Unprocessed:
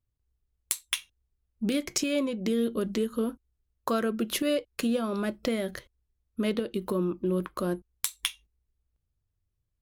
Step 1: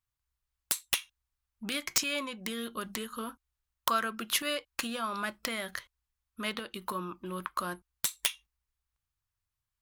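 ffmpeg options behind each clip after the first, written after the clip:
-af "lowshelf=f=690:t=q:w=1.5:g=-12.5,aeval=exprs='(mod(6.68*val(0)+1,2)-1)/6.68':c=same,volume=2dB"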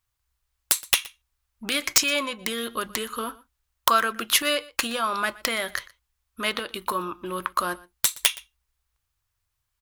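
-af "equalizer=f=190:t=o:w=0.8:g=-8,aecho=1:1:120:0.0841,volume=9dB"

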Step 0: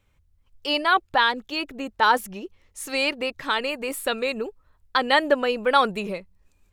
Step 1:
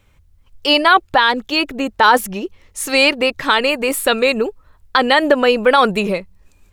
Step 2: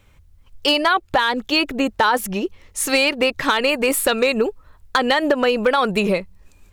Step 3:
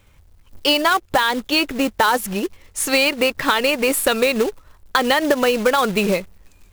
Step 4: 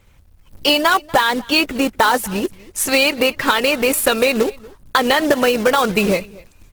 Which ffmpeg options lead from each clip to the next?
-af "alimiter=level_in=12dB:limit=-1dB:release=50:level=0:latency=1,volume=-1dB"
-af "acompressor=threshold=-14dB:ratio=16,asoftclip=type=hard:threshold=-10dB,volume=1.5dB"
-af "acrusher=bits=3:mode=log:mix=0:aa=0.000001"
-af "aecho=1:1:241:0.0708,volume=2dB" -ar 48000 -c:a libopus -b:a 16k

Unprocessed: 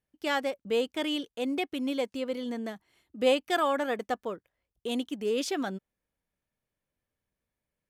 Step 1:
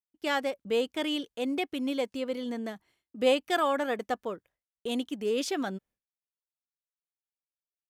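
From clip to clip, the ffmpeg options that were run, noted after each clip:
-af "agate=range=-33dB:threshold=-56dB:ratio=3:detection=peak"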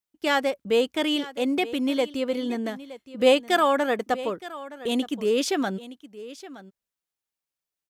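-af "aecho=1:1:919:0.15,volume=6dB"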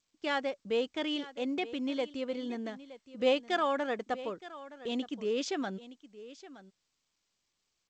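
-af "volume=-9dB" -ar 16000 -c:a g722

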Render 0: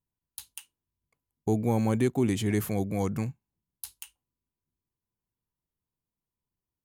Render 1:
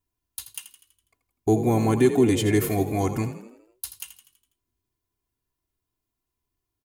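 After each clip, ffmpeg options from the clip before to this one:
-filter_complex "[0:a]aecho=1:1:2.9:0.83,asplit=2[a][b];[b]asplit=6[c][d][e][f][g][h];[c]adelay=82,afreqshift=42,volume=-11.5dB[i];[d]adelay=164,afreqshift=84,volume=-17.2dB[j];[e]adelay=246,afreqshift=126,volume=-22.9dB[k];[f]adelay=328,afreqshift=168,volume=-28.5dB[l];[g]adelay=410,afreqshift=210,volume=-34.2dB[m];[h]adelay=492,afreqshift=252,volume=-39.9dB[n];[i][j][k][l][m][n]amix=inputs=6:normalize=0[o];[a][o]amix=inputs=2:normalize=0,volume=4dB"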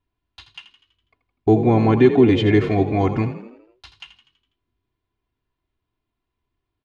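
-af "lowpass=f=3.7k:w=0.5412,lowpass=f=3.7k:w=1.3066,volume=5.5dB"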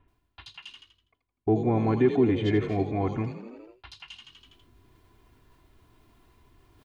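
-filter_complex "[0:a]acrossover=split=2900[a][b];[b]adelay=80[c];[a][c]amix=inputs=2:normalize=0,areverse,acompressor=mode=upward:threshold=-27dB:ratio=2.5,areverse,volume=-8.5dB"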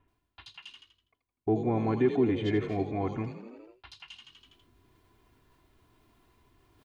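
-af "lowshelf=f=88:g=-5.5,volume=-3dB"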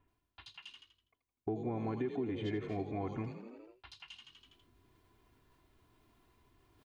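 -af "acompressor=threshold=-29dB:ratio=6,volume=-4dB"

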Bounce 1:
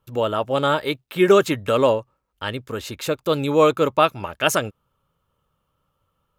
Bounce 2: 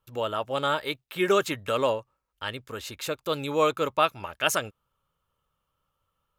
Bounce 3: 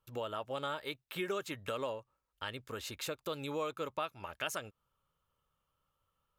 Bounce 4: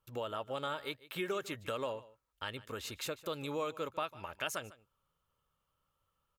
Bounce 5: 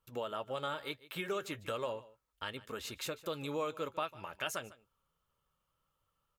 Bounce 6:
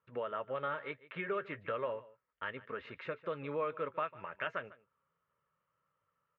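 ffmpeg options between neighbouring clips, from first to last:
-af "equalizer=f=200:w=0.33:g=-7,volume=-3.5dB"
-af "acompressor=threshold=-33dB:ratio=3,volume=-4dB"
-af "aecho=1:1:149:0.112"
-af "flanger=delay=4.2:depth=2.7:regen=-67:speed=0.4:shape=triangular,volume=4dB"
-af "highpass=150,equalizer=f=220:t=q:w=4:g=-5,equalizer=f=320:t=q:w=4:g=-7,equalizer=f=790:t=q:w=4:g=-8,equalizer=f=1.9k:t=q:w=4:g=4,lowpass=f=2.2k:w=0.5412,lowpass=f=2.2k:w=1.3066,volume=2.5dB"

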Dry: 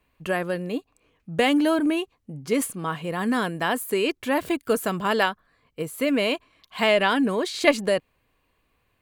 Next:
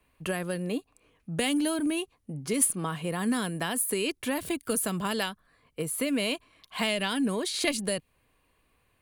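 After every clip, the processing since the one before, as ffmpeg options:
-filter_complex "[0:a]equalizer=f=9.8k:w=3.9:g=10.5,acrossover=split=220|3000[a][b][c];[b]acompressor=threshold=-30dB:ratio=6[d];[a][d][c]amix=inputs=3:normalize=0"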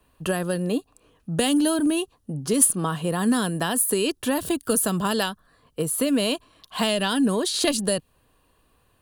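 -af "equalizer=f=2.2k:t=o:w=0.3:g=-14.5,volume=6.5dB"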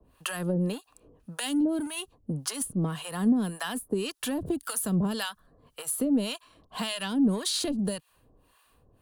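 -filter_complex "[0:a]acrossover=split=240[a][b];[b]acompressor=threshold=-28dB:ratio=6[c];[a][c]amix=inputs=2:normalize=0,asplit=2[d][e];[e]asoftclip=type=tanh:threshold=-30.5dB,volume=-3dB[f];[d][f]amix=inputs=2:normalize=0,acrossover=split=750[g][h];[g]aeval=exprs='val(0)*(1-1/2+1/2*cos(2*PI*1.8*n/s))':c=same[i];[h]aeval=exprs='val(0)*(1-1/2-1/2*cos(2*PI*1.8*n/s))':c=same[j];[i][j]amix=inputs=2:normalize=0"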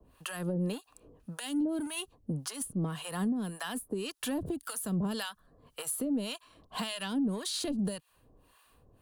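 -af "alimiter=level_in=0.5dB:limit=-24dB:level=0:latency=1:release=477,volume=-0.5dB"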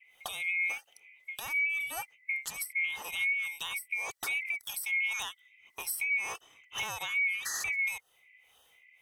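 -af "afftfilt=real='real(if(lt(b,920),b+92*(1-2*mod(floor(b/92),2)),b),0)':imag='imag(if(lt(b,920),b+92*(1-2*mod(floor(b/92),2)),b),0)':win_size=2048:overlap=0.75"

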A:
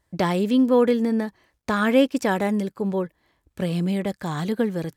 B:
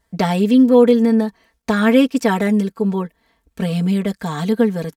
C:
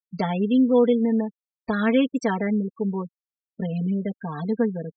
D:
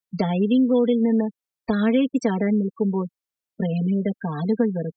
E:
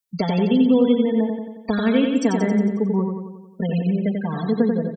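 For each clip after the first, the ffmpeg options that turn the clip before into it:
-af "aecho=1:1:4.4:0.96,volume=2dB"
-af "afftfilt=real='re*gte(hypot(re,im),0.0794)':imag='im*gte(hypot(re,im),0.0794)':win_size=1024:overlap=0.75,highshelf=f=7.1k:g=8.5,volume=-7dB"
-filter_complex "[0:a]acrossover=split=230|620|2700[a][b][c][d];[a]acompressor=threshold=-30dB:ratio=4[e];[b]acompressor=threshold=-25dB:ratio=4[f];[c]acompressor=threshold=-40dB:ratio=4[g];[d]acompressor=threshold=-44dB:ratio=4[h];[e][f][g][h]amix=inputs=4:normalize=0,volume=5dB"
-filter_complex "[0:a]highshelf=f=4.3k:g=8,asplit=2[a][b];[b]aecho=0:1:90|180|270|360|450|540|630|720:0.596|0.34|0.194|0.11|0.0629|0.0358|0.0204|0.0116[c];[a][c]amix=inputs=2:normalize=0"

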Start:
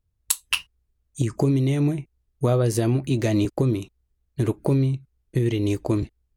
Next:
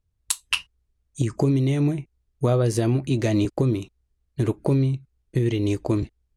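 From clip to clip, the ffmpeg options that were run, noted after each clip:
-af "lowpass=9.8k"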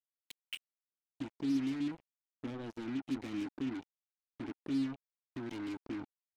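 -filter_complex "[0:a]asplit=3[a][b][c];[a]bandpass=f=270:t=q:w=8,volume=0dB[d];[b]bandpass=f=2.29k:t=q:w=8,volume=-6dB[e];[c]bandpass=f=3.01k:t=q:w=8,volume=-9dB[f];[d][e][f]amix=inputs=3:normalize=0,acrusher=bits=5:mix=0:aa=0.5,volume=-7dB"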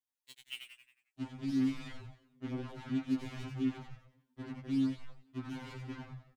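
-filter_complex "[0:a]asplit=2[a][b];[b]asplit=6[c][d][e][f][g][h];[c]adelay=90,afreqshift=-90,volume=-4.5dB[i];[d]adelay=180,afreqshift=-180,volume=-11.2dB[j];[e]adelay=270,afreqshift=-270,volume=-18dB[k];[f]adelay=360,afreqshift=-360,volume=-24.7dB[l];[g]adelay=450,afreqshift=-450,volume=-31.5dB[m];[h]adelay=540,afreqshift=-540,volume=-38.2dB[n];[i][j][k][l][m][n]amix=inputs=6:normalize=0[o];[a][o]amix=inputs=2:normalize=0,afftfilt=real='re*2.45*eq(mod(b,6),0)':imag='im*2.45*eq(mod(b,6),0)':win_size=2048:overlap=0.75,volume=1dB"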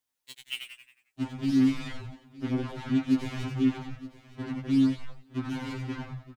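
-af "aecho=1:1:917:0.126,volume=8.5dB"

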